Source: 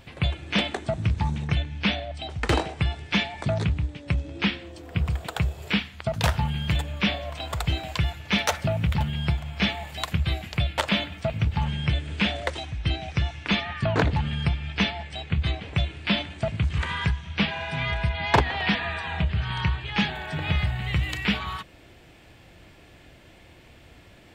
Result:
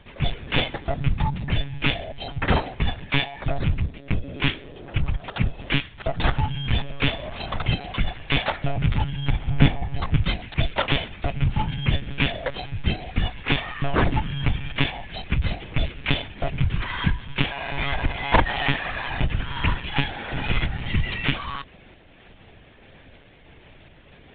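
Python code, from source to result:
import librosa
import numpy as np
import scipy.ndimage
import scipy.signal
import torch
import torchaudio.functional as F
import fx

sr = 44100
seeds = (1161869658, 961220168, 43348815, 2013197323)

p1 = fx.tilt_eq(x, sr, slope=-3.5, at=(9.49, 10.15))
p2 = fx.volume_shaper(p1, sr, bpm=93, per_beat=1, depth_db=-9, release_ms=252.0, shape='slow start')
p3 = p1 + F.gain(torch.from_numpy(p2), -2.0).numpy()
p4 = fx.lpc_monotone(p3, sr, seeds[0], pitch_hz=140.0, order=16)
y = F.gain(torch.from_numpy(p4), -2.5).numpy()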